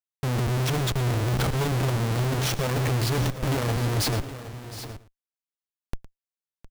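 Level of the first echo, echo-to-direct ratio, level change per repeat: -16.5 dB, -10.5 dB, no regular repeats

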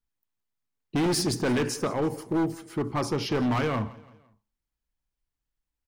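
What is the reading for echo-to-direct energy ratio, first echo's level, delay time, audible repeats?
-19.5 dB, -20.5 dB, 169 ms, 3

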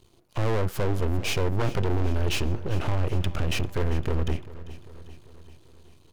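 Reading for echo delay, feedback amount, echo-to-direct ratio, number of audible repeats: 395 ms, 59%, -15.0 dB, 4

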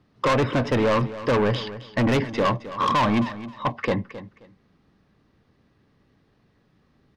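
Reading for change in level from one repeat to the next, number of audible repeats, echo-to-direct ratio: -13.0 dB, 2, -14.5 dB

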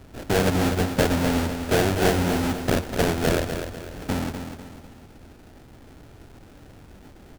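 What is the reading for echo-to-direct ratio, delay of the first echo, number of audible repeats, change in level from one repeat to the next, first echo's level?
-7.0 dB, 248 ms, 4, -8.0 dB, -8.0 dB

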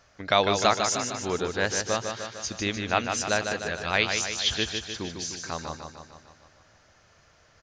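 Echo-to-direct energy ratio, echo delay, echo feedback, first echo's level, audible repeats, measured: -4.0 dB, 151 ms, 59%, -6.0 dB, 7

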